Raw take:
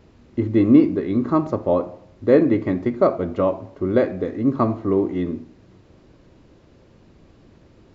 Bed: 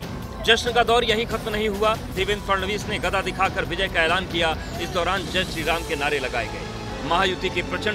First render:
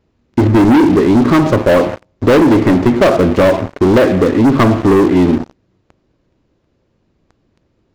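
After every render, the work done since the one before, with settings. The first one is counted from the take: sample leveller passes 5; compressor 2.5:1, threshold -8 dBFS, peak gain reduction 3.5 dB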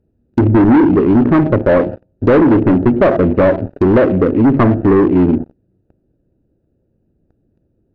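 Wiener smoothing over 41 samples; treble ducked by the level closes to 1800 Hz, closed at -10 dBFS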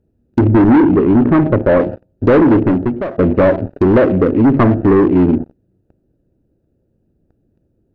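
0.82–1.8 air absorption 120 m; 2.56–3.18 fade out, to -20.5 dB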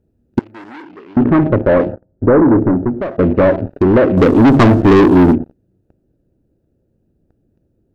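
0.39–1.17 differentiator; 1.92–3.01 LPF 1600 Hz 24 dB/oct; 4.17–5.33 sample leveller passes 2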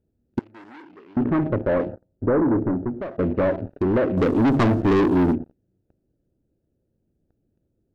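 gain -10 dB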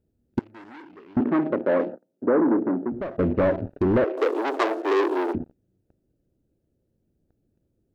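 1.2–2.92 HPF 210 Hz 24 dB/oct; 4.04–5.35 steep high-pass 350 Hz 48 dB/oct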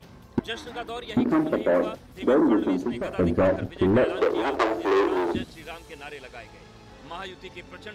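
add bed -16.5 dB

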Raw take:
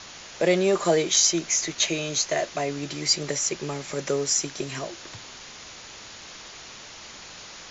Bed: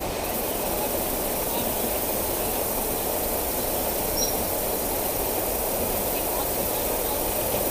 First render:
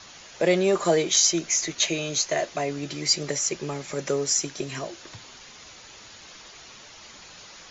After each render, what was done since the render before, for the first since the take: denoiser 6 dB, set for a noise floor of -43 dBFS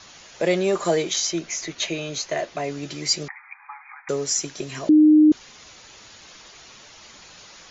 1.13–2.64 air absorption 85 m; 3.28–4.09 brick-wall FIR band-pass 750–2500 Hz; 4.89–5.32 bleep 306 Hz -9.5 dBFS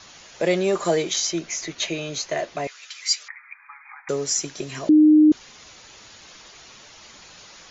2.67–3.85 HPF 1200 Hz 24 dB/oct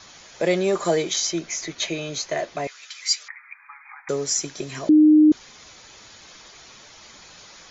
notch 2800 Hz, Q 17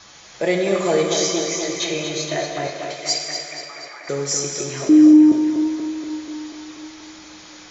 on a send: tape echo 0.241 s, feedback 74%, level -5 dB, low-pass 5300 Hz; on the sum: non-linear reverb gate 0.44 s falling, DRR 2.5 dB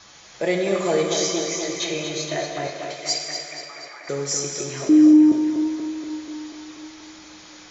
gain -2.5 dB

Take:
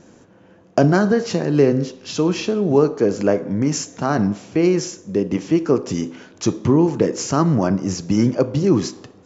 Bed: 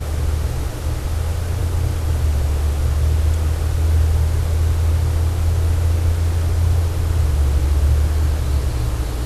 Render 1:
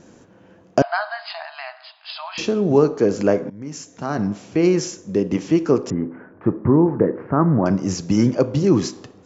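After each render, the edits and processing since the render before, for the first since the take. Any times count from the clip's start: 0.82–2.38 brick-wall FIR band-pass 620–5100 Hz; 3.5–4.68 fade in, from -20.5 dB; 5.9–7.66 steep low-pass 1800 Hz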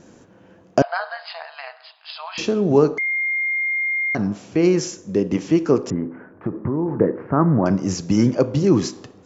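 0.85–2.27 AM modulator 160 Hz, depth 30%; 2.98–4.15 bleep 2120 Hz -19 dBFS; 5.95–6.94 compressor, threshold -18 dBFS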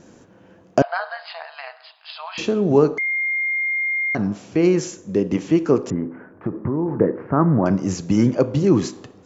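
dynamic EQ 5300 Hz, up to -6 dB, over -50 dBFS, Q 3.3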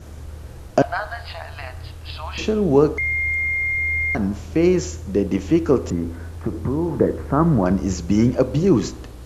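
add bed -16 dB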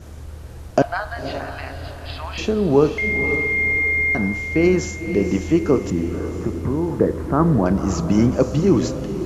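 diffused feedback echo 0.525 s, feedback 41%, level -9 dB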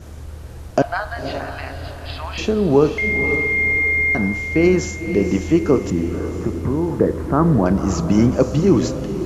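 gain +1.5 dB; limiter -3 dBFS, peak gain reduction 2 dB

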